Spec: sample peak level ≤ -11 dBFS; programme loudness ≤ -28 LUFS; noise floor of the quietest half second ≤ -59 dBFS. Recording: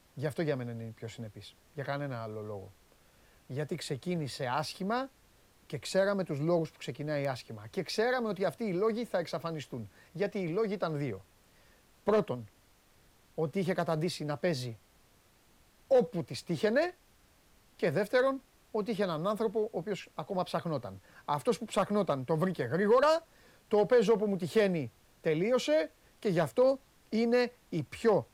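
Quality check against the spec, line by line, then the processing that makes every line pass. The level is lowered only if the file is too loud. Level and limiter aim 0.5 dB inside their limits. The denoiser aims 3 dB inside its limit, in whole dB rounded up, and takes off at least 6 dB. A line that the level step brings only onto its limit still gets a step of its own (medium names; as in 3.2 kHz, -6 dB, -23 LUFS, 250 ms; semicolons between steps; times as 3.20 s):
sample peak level -17.5 dBFS: pass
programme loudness -32.0 LUFS: pass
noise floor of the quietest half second -64 dBFS: pass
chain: none needed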